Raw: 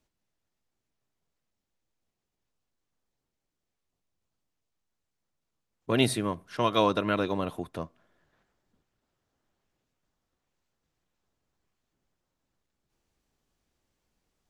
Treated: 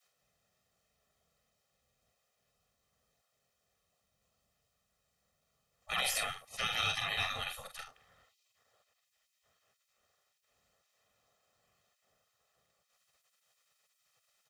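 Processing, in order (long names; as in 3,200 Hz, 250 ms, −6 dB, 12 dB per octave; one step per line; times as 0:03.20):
parametric band 100 Hz −8 dB 0.23 octaves
on a send: ambience of single reflections 45 ms −6 dB, 76 ms −14 dB
on the sum: gate on every frequency bin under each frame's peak −20 dB weak
brickwall limiter −29.5 dBFS, peak gain reduction 11.5 dB
comb filter 1.6 ms, depth 76%
level +6 dB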